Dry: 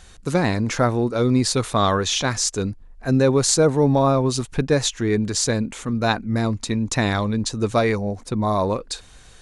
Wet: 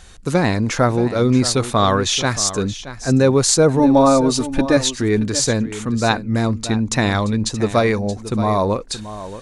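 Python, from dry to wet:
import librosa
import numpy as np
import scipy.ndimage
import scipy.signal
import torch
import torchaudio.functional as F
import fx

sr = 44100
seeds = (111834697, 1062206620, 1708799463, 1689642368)

p1 = fx.comb(x, sr, ms=3.4, depth=0.71, at=(3.79, 4.77))
p2 = p1 + fx.echo_single(p1, sr, ms=626, db=-13.5, dry=0)
y = p2 * 10.0 ** (3.0 / 20.0)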